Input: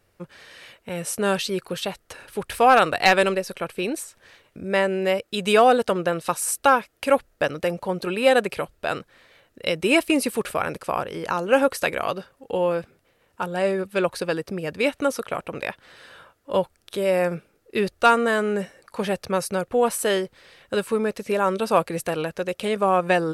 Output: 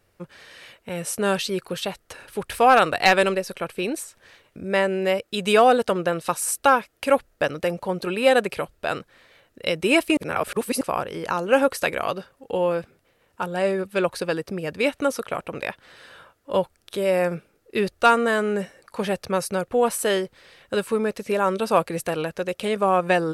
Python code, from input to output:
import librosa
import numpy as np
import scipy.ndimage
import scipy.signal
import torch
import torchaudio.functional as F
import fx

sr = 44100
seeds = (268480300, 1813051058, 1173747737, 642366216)

y = fx.edit(x, sr, fx.reverse_span(start_s=10.17, length_s=0.64), tone=tone)